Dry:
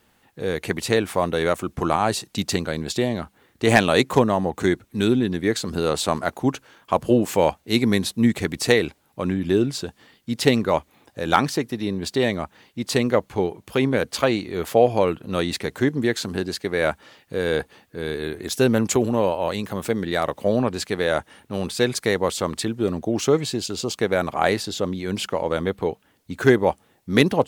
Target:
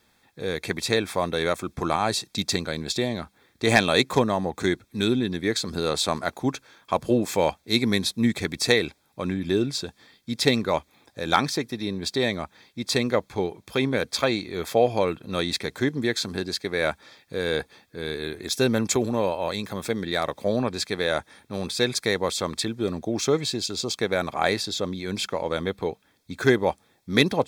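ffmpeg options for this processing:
ffmpeg -i in.wav -af "asuperstop=centerf=2900:order=12:qfactor=7.5,equalizer=frequency=4000:width_type=o:width=1.8:gain=6.5,volume=-4dB" out.wav

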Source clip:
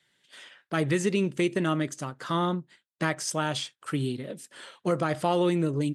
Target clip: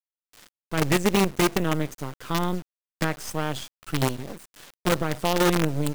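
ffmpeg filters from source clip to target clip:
ffmpeg -i in.wav -af "lowshelf=frequency=310:gain=7,acrusher=bits=4:dc=4:mix=0:aa=0.000001" out.wav

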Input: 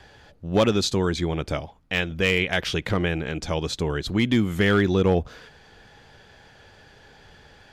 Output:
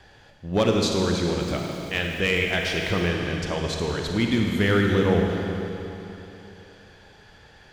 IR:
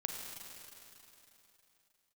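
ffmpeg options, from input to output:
-filter_complex "[1:a]atrim=start_sample=2205[link_01];[0:a][link_01]afir=irnorm=-1:irlink=0,asettb=1/sr,asplit=3[link_02][link_03][link_04];[link_02]atrim=end=1.404[link_05];[link_03]atrim=start=1.4:end=3.08,asetpts=PTS-STARTPTS,afade=type=in:duration=0.004:curve=qsin,afade=type=out:start_time=1.676:duration=0.004:curve=qsin,aeval=exprs='val(0)*gte(abs(val(0)),0.00841)':channel_layout=same[link_06];[link_04]atrim=start=3.076[link_07];[link_05][link_06]acrossfade=duration=0.004:curve1=hsin:curve2=qsin[link_08];[link_08][link_07]acrossfade=duration=0.004:curve1=qsin:curve2=hsin,volume=-1dB"

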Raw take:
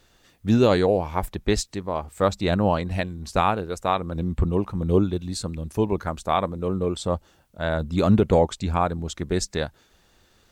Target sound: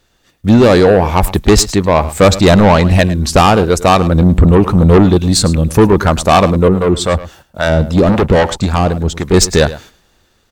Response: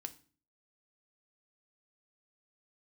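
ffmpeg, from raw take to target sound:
-filter_complex "[0:a]agate=range=-13dB:threshold=-54dB:ratio=16:detection=peak,dynaudnorm=framelen=450:gausssize=5:maxgain=8.5dB,asoftclip=type=tanh:threshold=-16.5dB,asettb=1/sr,asplit=3[link_01][link_02][link_03];[link_01]atrim=end=6.684[link_04];[link_02]atrim=start=6.68:end=9.34,asetpts=PTS-STARTPTS,afade=type=in:duration=0.004:curve=qsin,afade=type=out:start_time=2.656:duration=0.004:curve=qsin,acrossover=split=600[link_05][link_06];[link_05]aeval=exprs='val(0)*(1-0.7/2+0.7/2*cos(2*PI*3.7*n/s))':channel_layout=same[link_07];[link_06]aeval=exprs='val(0)*(1-0.7/2-0.7/2*cos(2*PI*3.7*n/s))':channel_layout=same[link_08];[link_07][link_08]amix=inputs=2:normalize=0[link_09];[link_03]atrim=start=9.336[link_10];[link_04][link_09]acrossfade=duration=0.004:curve1=hsin:curve2=qsin[link_11];[link_11][link_10]acrossfade=duration=0.004:curve1=qsin:curve2=hsin,aecho=1:1:106:0.158,alimiter=level_in=15.5dB:limit=-1dB:release=50:level=0:latency=1,volume=-1dB"

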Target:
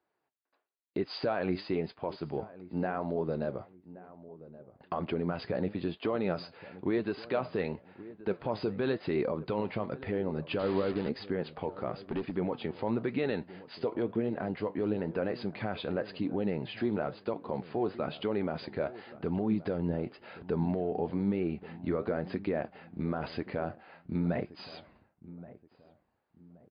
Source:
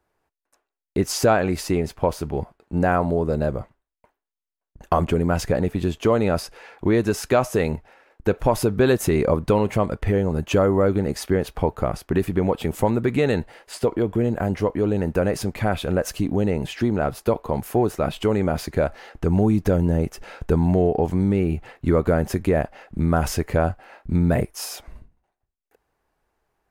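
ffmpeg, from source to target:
ffmpeg -i in.wav -filter_complex "[0:a]highpass=160,alimiter=limit=-12.5dB:level=0:latency=1:release=66,asettb=1/sr,asplit=3[link_01][link_02][link_03];[link_01]atrim=end=10.594[link_04];[link_02]atrim=start=10.59:end=11.09,asetpts=PTS-STARTPTS,afade=type=in:duration=0.004:curve=qsin,afade=type=out:start_time=0.496:duration=0.004:curve=qsin,acrusher=bits=4:mix=0:aa=0.5[link_05];[link_03]atrim=start=11.086[link_06];[link_04][link_05]acrossfade=duration=0.004:curve1=hsin:curve2=qsin[link_07];[link_07][link_06]acrossfade=duration=0.004:curve1=qsin:curve2=hsin,asettb=1/sr,asplit=3[link_08][link_09][link_10];[link_08]atrim=end=11.934[link_11];[link_09]atrim=start=11.93:end=12.36,asetpts=PTS-STARTPTS,afade=type=in:duration=0.004:curve=qsin,afade=type=out:start_time=0.426:duration=0.004:curve=qsin,asoftclip=type=hard:threshold=-20.5dB[link_12];[link_10]atrim=start=12.356[link_13];[link_11][link_12]acrossfade=duration=0.004:curve1=hsin:curve2=qsin[link_14];[link_14][link_13]acrossfade=duration=0.004:curve1=qsin:curve2=hsin,flanger=delay=2.4:depth=9.1:regen=72:speed=0.98:shape=triangular,asplit=2[link_15][link_16];[link_16]adelay=1125,lowpass=frequency=1000:poles=1,volume=-16.5dB,asplit=2[link_17][link_18];[link_18]adelay=1125,lowpass=frequency=1000:poles=1,volume=0.35,asplit=2[link_19][link_20];[link_20]adelay=1125,lowpass=frequency=1000:poles=1,volume=0.35[link_21];[link_15][link_17][link_19][link_21]amix=inputs=4:normalize=0,volume=-3.5dB" -ar 11025 -c:a libmp3lame -b:a 64k out.mp3

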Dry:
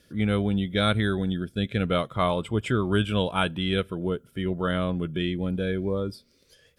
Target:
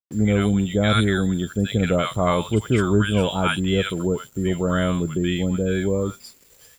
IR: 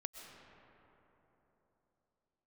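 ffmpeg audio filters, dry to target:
-filter_complex "[0:a]aeval=exprs='val(0)+0.00316*sin(2*PI*7300*n/s)':channel_layout=same,acrossover=split=950|3600[link_01][link_02][link_03];[link_02]adelay=80[link_04];[link_03]adelay=120[link_05];[link_01][link_04][link_05]amix=inputs=3:normalize=0,aeval=exprs='val(0)*gte(abs(val(0)),0.00355)':channel_layout=same,volume=5.5dB"

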